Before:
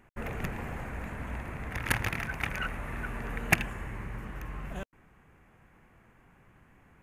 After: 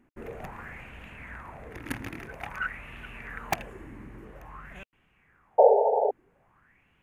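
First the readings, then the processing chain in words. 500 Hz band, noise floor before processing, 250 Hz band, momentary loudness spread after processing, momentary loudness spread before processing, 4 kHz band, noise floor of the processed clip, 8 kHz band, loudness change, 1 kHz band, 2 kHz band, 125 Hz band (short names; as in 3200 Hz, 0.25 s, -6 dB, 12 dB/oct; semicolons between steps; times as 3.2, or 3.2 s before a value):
+17.5 dB, -62 dBFS, -3.5 dB, 24 LU, 13 LU, -5.5 dB, -67 dBFS, -6.5 dB, +7.5 dB, +10.0 dB, -4.5 dB, -8.5 dB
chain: wrapped overs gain 6.5 dB; painted sound noise, 5.58–6.11, 400–920 Hz -17 dBFS; LFO bell 0.5 Hz 270–3000 Hz +16 dB; gain -9 dB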